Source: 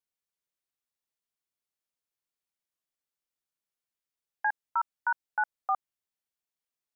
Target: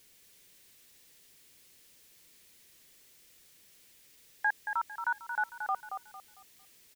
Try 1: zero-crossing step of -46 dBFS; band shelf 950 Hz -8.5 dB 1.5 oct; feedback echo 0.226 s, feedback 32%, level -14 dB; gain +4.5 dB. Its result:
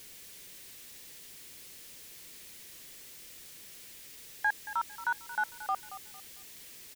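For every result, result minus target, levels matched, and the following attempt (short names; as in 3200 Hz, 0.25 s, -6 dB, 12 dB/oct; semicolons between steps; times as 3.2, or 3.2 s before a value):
zero-crossing step: distortion +11 dB; echo-to-direct -6.5 dB
zero-crossing step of -57.5 dBFS; band shelf 950 Hz -8.5 dB 1.5 oct; feedback echo 0.226 s, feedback 32%, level -14 dB; gain +4.5 dB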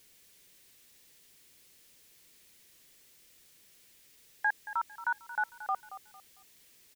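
echo-to-direct -6.5 dB
zero-crossing step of -57.5 dBFS; band shelf 950 Hz -8.5 dB 1.5 oct; feedback echo 0.226 s, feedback 32%, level -7.5 dB; gain +4.5 dB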